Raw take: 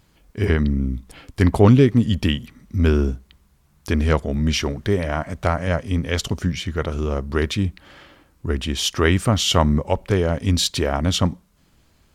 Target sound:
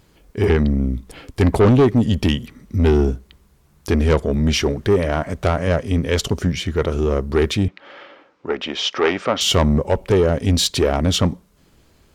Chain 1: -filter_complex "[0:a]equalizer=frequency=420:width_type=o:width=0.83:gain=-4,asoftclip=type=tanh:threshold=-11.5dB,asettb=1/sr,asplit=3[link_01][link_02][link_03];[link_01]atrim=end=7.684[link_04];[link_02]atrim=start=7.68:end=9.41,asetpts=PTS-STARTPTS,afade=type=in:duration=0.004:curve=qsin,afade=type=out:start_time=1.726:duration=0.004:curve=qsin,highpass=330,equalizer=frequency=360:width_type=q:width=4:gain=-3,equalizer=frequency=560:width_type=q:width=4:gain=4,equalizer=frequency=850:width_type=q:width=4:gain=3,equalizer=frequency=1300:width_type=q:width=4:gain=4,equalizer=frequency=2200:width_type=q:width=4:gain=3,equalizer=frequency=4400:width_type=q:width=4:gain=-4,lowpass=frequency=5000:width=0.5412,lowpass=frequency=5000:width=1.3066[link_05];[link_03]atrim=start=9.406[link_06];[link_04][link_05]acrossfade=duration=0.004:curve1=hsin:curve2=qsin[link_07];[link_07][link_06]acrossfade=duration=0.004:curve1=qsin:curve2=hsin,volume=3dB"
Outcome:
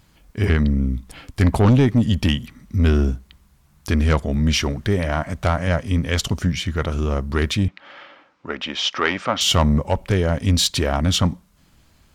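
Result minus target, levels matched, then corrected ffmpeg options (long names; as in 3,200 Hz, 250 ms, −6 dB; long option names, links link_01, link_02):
500 Hz band −5.0 dB
-filter_complex "[0:a]equalizer=frequency=420:width_type=o:width=0.83:gain=6,asoftclip=type=tanh:threshold=-11.5dB,asettb=1/sr,asplit=3[link_01][link_02][link_03];[link_01]atrim=end=7.684[link_04];[link_02]atrim=start=7.68:end=9.41,asetpts=PTS-STARTPTS,afade=type=in:duration=0.004:curve=qsin,afade=type=out:start_time=1.726:duration=0.004:curve=qsin,highpass=330,equalizer=frequency=360:width_type=q:width=4:gain=-3,equalizer=frequency=560:width_type=q:width=4:gain=4,equalizer=frequency=850:width_type=q:width=4:gain=3,equalizer=frequency=1300:width_type=q:width=4:gain=4,equalizer=frequency=2200:width_type=q:width=4:gain=3,equalizer=frequency=4400:width_type=q:width=4:gain=-4,lowpass=frequency=5000:width=0.5412,lowpass=frequency=5000:width=1.3066[link_05];[link_03]atrim=start=9.406[link_06];[link_04][link_05]acrossfade=duration=0.004:curve1=hsin:curve2=qsin[link_07];[link_07][link_06]acrossfade=duration=0.004:curve1=qsin:curve2=hsin,volume=3dB"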